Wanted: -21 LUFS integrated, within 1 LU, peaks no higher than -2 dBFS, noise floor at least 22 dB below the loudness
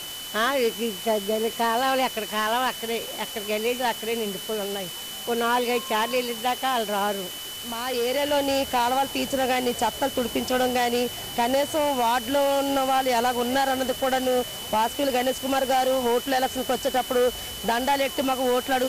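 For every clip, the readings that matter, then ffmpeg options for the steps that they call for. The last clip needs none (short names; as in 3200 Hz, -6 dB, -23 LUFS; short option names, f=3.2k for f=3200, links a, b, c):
steady tone 3000 Hz; tone level -36 dBFS; noise floor -36 dBFS; noise floor target -47 dBFS; loudness -24.5 LUFS; peak -13.5 dBFS; loudness target -21.0 LUFS
-> -af "bandreject=f=3k:w=30"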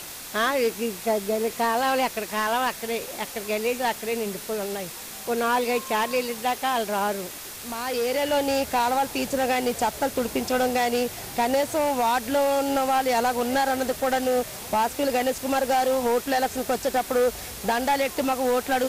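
steady tone none; noise floor -38 dBFS; noise floor target -47 dBFS
-> -af "afftdn=nr=9:nf=-38"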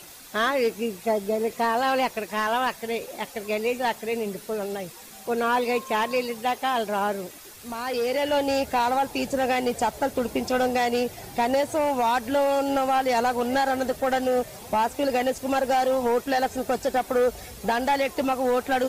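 noise floor -44 dBFS; noise floor target -47 dBFS
-> -af "afftdn=nr=6:nf=-44"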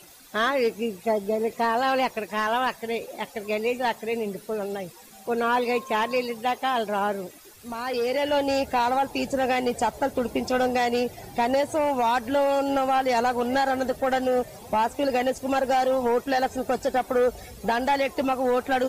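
noise floor -48 dBFS; loudness -25.0 LUFS; peak -14.5 dBFS; loudness target -21.0 LUFS
-> -af "volume=4dB"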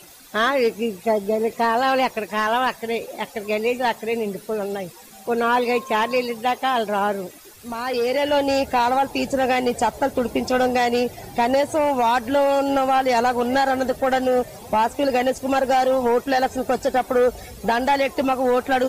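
loudness -21.0 LUFS; peak -10.5 dBFS; noise floor -44 dBFS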